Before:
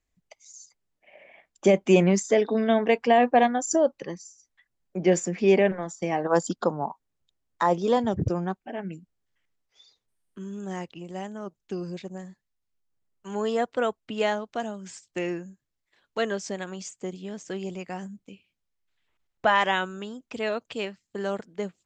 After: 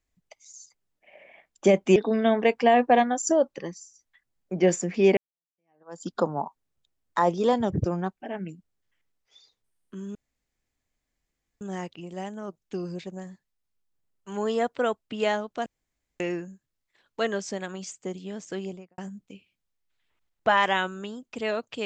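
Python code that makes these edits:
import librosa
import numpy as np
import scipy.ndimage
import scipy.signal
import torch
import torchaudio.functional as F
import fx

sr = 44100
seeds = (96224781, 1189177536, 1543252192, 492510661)

y = fx.studio_fade_out(x, sr, start_s=17.56, length_s=0.4)
y = fx.edit(y, sr, fx.cut(start_s=1.96, length_s=0.44),
    fx.fade_in_span(start_s=5.61, length_s=0.94, curve='exp'),
    fx.insert_room_tone(at_s=10.59, length_s=1.46),
    fx.room_tone_fill(start_s=14.64, length_s=0.54), tone=tone)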